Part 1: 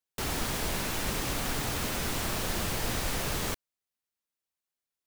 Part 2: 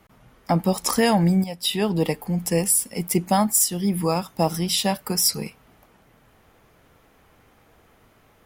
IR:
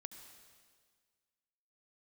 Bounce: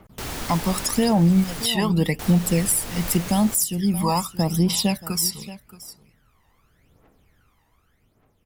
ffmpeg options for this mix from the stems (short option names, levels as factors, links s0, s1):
-filter_complex "[0:a]volume=1.06,asplit=3[s0][s1][s2];[s0]atrim=end=1.66,asetpts=PTS-STARTPTS,afade=t=out:st=1.656:d=0.004:c=hsin[s3];[s1]atrim=start=1.66:end=2.19,asetpts=PTS-STARTPTS,volume=0[s4];[s2]atrim=start=2.19,asetpts=PTS-STARTPTS,afade=t=in:d=0.004:c=hsin[s5];[s3][s4][s5]concat=n=3:v=0:a=1[s6];[1:a]dynaudnorm=f=140:g=13:m=1.78,aphaser=in_gain=1:out_gain=1:delay=1.1:decay=0.73:speed=0.85:type=triangular,volume=0.75,afade=t=out:st=4.91:d=0.54:silence=0.266073,asplit=2[s7][s8];[s8]volume=0.106,aecho=0:1:626:1[s9];[s6][s7][s9]amix=inputs=3:normalize=0,alimiter=limit=0.316:level=0:latency=1:release=380"